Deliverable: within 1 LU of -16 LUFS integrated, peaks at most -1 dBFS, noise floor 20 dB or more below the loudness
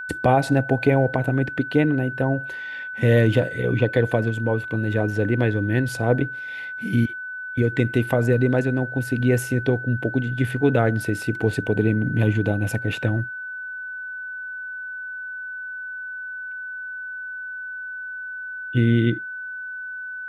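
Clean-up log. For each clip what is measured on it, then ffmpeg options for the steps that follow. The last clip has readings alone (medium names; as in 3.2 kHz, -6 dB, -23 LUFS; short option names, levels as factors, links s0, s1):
steady tone 1.5 kHz; tone level -30 dBFS; loudness -23.5 LUFS; peak level -4.5 dBFS; loudness target -16.0 LUFS
-> -af "bandreject=f=1500:w=30"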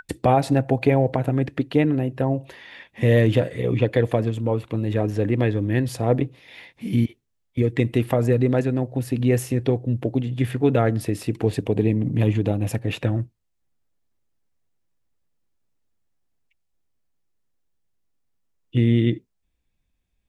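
steady tone not found; loudness -22.5 LUFS; peak level -5.0 dBFS; loudness target -16.0 LUFS
-> -af "volume=2.11,alimiter=limit=0.891:level=0:latency=1"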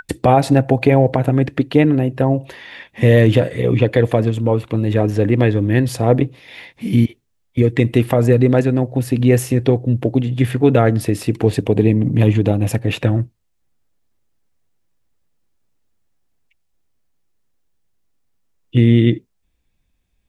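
loudness -16.0 LUFS; peak level -1.0 dBFS; noise floor -66 dBFS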